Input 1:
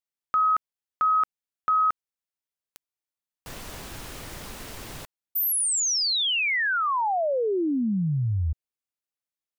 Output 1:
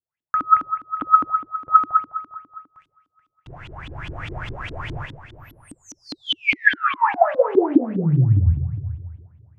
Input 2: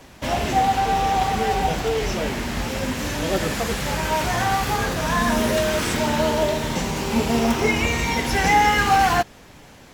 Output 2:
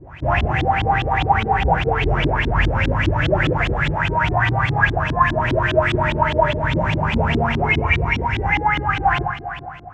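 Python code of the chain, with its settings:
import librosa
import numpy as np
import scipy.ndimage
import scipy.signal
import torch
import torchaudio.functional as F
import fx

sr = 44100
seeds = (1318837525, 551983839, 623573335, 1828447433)

p1 = fx.graphic_eq_10(x, sr, hz=(250, 500, 1000, 4000, 8000, 16000), db=(-9, -8, -3, -12, 3, -6))
p2 = fx.rev_double_slope(p1, sr, seeds[0], early_s=0.75, late_s=3.2, knee_db=-21, drr_db=2.0)
p3 = fx.rider(p2, sr, range_db=5, speed_s=0.5)
p4 = fx.peak_eq(p3, sr, hz=110.0, db=10.0, octaves=0.96)
p5 = p4 + fx.echo_multitap(p4, sr, ms=(47, 60, 433, 629), db=(-16.5, -8.5, -12.5, -19.5), dry=0)
y = fx.filter_lfo_lowpass(p5, sr, shape='saw_up', hz=4.9, low_hz=260.0, high_hz=3700.0, q=7.5)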